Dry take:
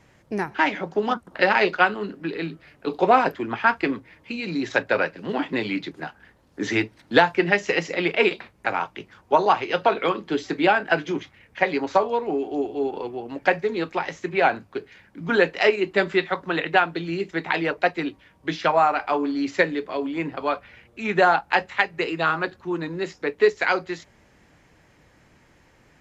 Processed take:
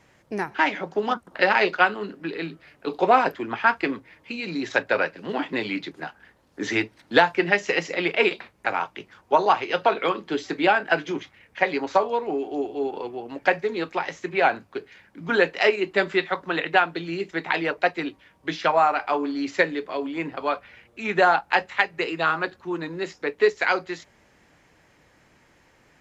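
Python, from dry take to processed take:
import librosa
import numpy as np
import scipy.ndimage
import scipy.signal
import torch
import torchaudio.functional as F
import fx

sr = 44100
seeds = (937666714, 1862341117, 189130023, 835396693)

y = fx.low_shelf(x, sr, hz=240.0, db=-6.0)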